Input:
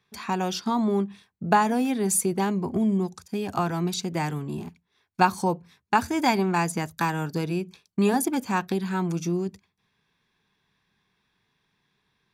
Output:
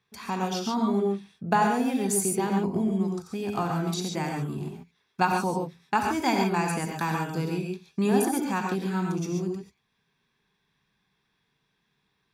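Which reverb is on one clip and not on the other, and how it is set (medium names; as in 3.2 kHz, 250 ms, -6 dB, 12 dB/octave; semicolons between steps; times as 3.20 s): gated-style reverb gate 160 ms rising, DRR 1.5 dB; trim -4 dB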